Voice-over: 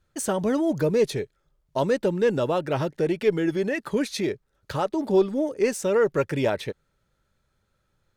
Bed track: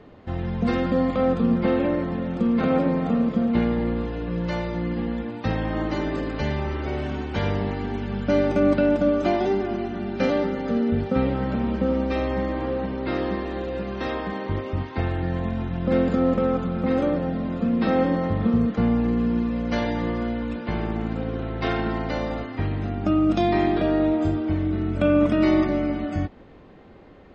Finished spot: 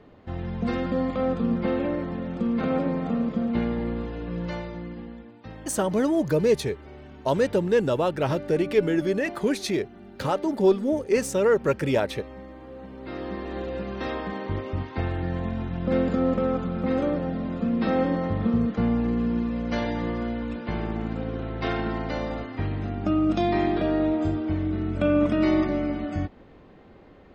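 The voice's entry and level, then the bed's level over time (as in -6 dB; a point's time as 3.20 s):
5.50 s, +0.5 dB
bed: 4.45 s -4 dB
5.39 s -16.5 dB
12.66 s -16.5 dB
13.58 s -2.5 dB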